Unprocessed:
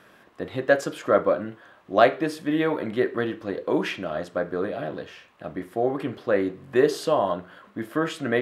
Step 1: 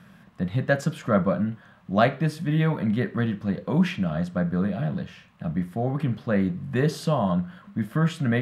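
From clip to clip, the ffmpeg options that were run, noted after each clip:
-af "lowshelf=f=250:t=q:w=3:g=10.5,volume=-2dB"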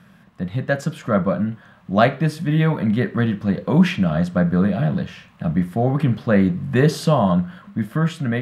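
-af "dynaudnorm=f=360:g=7:m=6.5dB,volume=1dB"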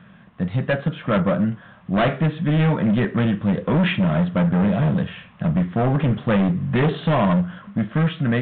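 -af "aresample=16000,asoftclip=type=hard:threshold=-17.5dB,aresample=44100,aresample=8000,aresample=44100,volume=2.5dB"

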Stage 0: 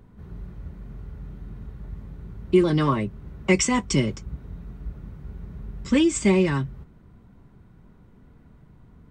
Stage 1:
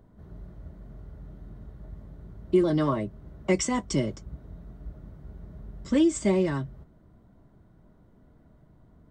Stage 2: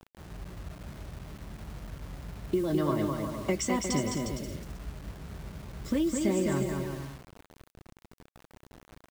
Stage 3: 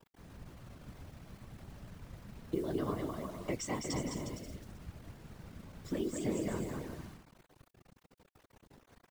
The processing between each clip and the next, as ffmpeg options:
-af "equalizer=f=315:t=o:w=0.33:g=5,equalizer=f=630:t=o:w=0.33:g=11,equalizer=f=2.5k:t=o:w=0.33:g=-8,volume=-6dB"
-af "acompressor=threshold=-26dB:ratio=4,aecho=1:1:210|357|459.9|531.9|582.4:0.631|0.398|0.251|0.158|0.1,acrusher=bits=7:mix=0:aa=0.000001"
-af "afftfilt=real='hypot(re,im)*cos(2*PI*random(0))':imag='hypot(re,im)*sin(2*PI*random(1))':win_size=512:overlap=0.75,volume=-2dB"

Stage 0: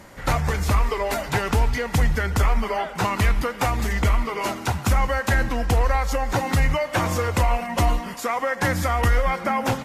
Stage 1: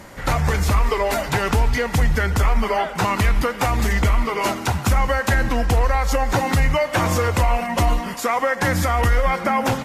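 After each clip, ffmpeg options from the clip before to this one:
-af "alimiter=level_in=13dB:limit=-1dB:release=50:level=0:latency=1,volume=-8.5dB"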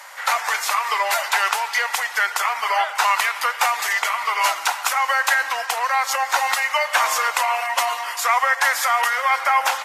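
-af "highpass=f=820:w=0.5412,highpass=f=820:w=1.3066,volume=5dB"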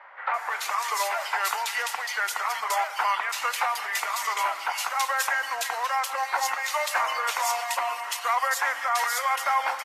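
-filter_complex "[0:a]acrossover=split=2300[a][b];[b]adelay=340[c];[a][c]amix=inputs=2:normalize=0,volume=-5.5dB"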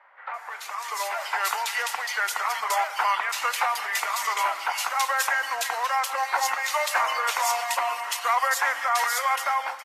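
-af "dynaudnorm=f=720:g=3:m=11.5dB,volume=-8dB"

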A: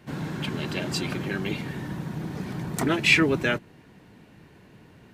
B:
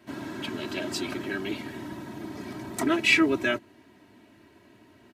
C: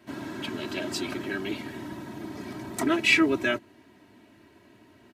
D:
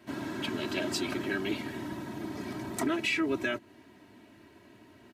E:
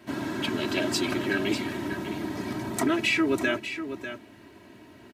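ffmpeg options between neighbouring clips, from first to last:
-af "highpass=110,aecho=1:1:3.1:0.84,volume=-4dB"
-af anull
-af "alimiter=limit=-20dB:level=0:latency=1:release=229"
-af "aecho=1:1:596:0.316,volume=5dB"

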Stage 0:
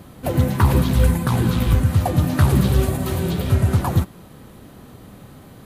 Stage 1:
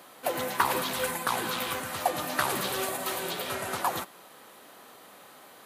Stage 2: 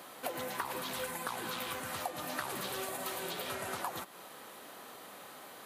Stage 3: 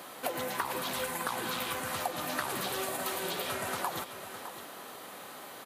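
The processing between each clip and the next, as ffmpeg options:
-af "highpass=670"
-af "acompressor=threshold=-38dB:ratio=4,volume=1dB"
-af "aecho=1:1:609:0.266,volume=4dB"

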